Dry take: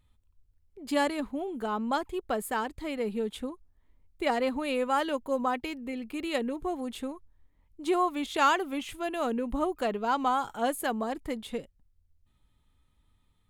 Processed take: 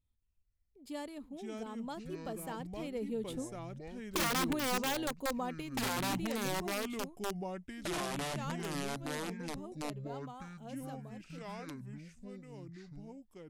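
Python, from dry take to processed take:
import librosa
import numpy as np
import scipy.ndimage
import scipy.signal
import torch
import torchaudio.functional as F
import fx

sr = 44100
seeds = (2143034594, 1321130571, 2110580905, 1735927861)

y = fx.doppler_pass(x, sr, speed_mps=6, closest_m=4.9, pass_at_s=4.27)
y = fx.peak_eq(y, sr, hz=1400.0, db=-8.5, octaves=2.0)
y = (np.mod(10.0 ** (27.5 / 20.0) * y + 1.0, 2.0) - 1.0) / 10.0 ** (27.5 / 20.0)
y = fx.echo_pitch(y, sr, ms=223, semitones=-5, count=2, db_per_echo=-3.0)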